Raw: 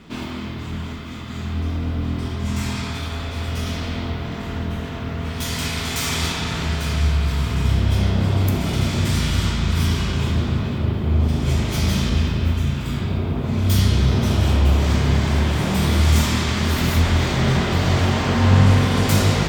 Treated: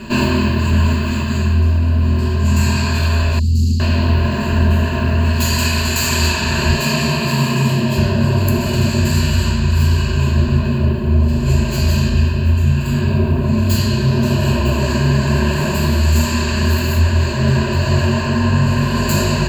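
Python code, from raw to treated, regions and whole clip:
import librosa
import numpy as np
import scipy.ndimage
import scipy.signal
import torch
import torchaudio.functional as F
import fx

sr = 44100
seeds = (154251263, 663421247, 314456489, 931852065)

y = fx.chain(x, sr, fx.cheby1_bandstop(low_hz=240.0, high_hz=4900.0, order=3),
    fx.high_shelf(hz=8400.0, db=-8.0),
    fx.doppler_dist(depth_ms=0.25), at=(3.39, 3.8))
y = fx.chain(y, sr, fx.highpass(hz=130.0, slope=24),
    fx.notch(hz=1500.0, q=6.9), at=(6.71, 7.98))
y = fx.ripple_eq(y, sr, per_octave=1.4, db=17)
y = fx.rider(y, sr, range_db=10, speed_s=0.5)
y = y * 10.0 ** (1.0 / 20.0)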